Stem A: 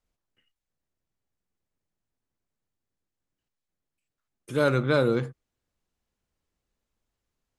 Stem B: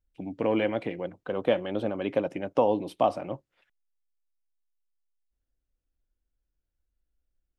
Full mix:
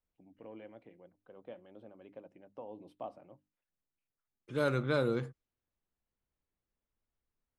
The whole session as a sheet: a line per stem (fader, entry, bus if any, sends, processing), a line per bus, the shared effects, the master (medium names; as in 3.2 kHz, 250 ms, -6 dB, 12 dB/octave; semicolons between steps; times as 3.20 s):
-8.0 dB, 0.00 s, no send, level-controlled noise filter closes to 2.6 kHz, open at -22.5 dBFS
2.66 s -23.5 dB -> 2.88 s -17 dB, 0.00 s, no send, treble shelf 2.4 kHz -8.5 dB; hum notches 50/100/150/200/250/300 Hz; auto duck -17 dB, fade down 1.60 s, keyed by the first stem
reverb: none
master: none